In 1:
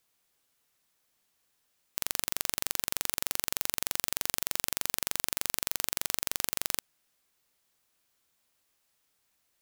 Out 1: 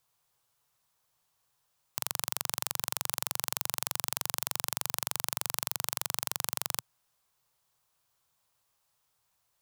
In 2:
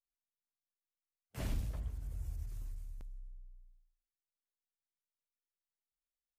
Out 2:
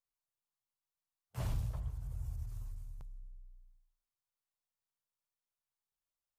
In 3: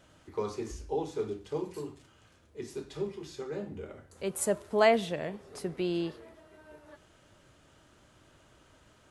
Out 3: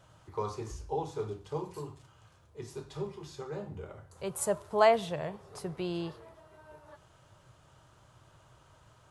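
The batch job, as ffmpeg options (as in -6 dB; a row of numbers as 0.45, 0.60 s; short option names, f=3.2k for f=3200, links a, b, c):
-af "equalizer=f=125:t=o:w=1:g=10,equalizer=f=250:t=o:w=1:g=-9,equalizer=f=1k:t=o:w=1:g=7,equalizer=f=2k:t=o:w=1:g=-4,volume=-1.5dB"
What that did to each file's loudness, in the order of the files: -1.5, +1.5, -1.0 LU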